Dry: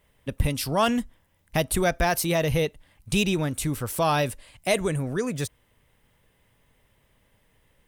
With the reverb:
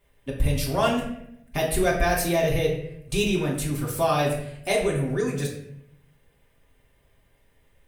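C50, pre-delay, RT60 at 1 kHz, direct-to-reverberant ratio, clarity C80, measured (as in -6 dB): 5.5 dB, 3 ms, 0.65 s, -4.5 dB, 8.0 dB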